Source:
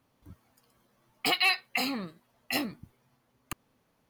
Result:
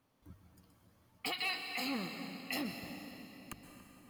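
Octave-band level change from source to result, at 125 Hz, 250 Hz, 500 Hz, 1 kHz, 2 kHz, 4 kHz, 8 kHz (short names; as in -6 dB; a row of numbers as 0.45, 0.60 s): -3.5, -4.5, -7.5, -9.0, -9.5, -9.5, -8.5 dB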